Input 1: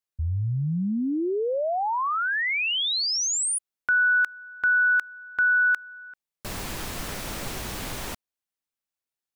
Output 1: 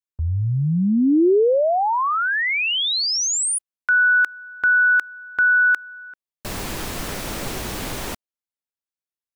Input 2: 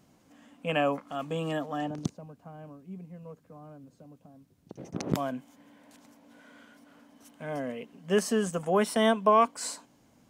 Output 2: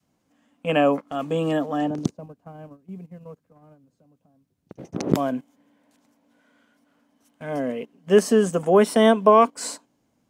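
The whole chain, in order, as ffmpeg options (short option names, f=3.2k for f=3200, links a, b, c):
-af "agate=range=-12dB:threshold=-48dB:ratio=16:release=58:detection=peak,adynamicequalizer=threshold=0.01:dfrequency=360:dqfactor=0.84:tfrequency=360:tqfactor=0.84:attack=5:release=100:ratio=0.375:range=3.5:mode=boostabove:tftype=bell,volume=4dB"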